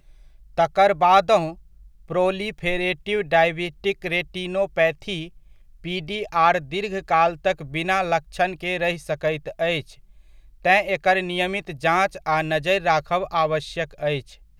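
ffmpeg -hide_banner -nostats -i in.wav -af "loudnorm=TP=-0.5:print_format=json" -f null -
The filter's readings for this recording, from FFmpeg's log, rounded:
"input_i" : "-22.2",
"input_tp" : "-4.4",
"input_lra" : "2.5",
"input_thresh" : "-32.6",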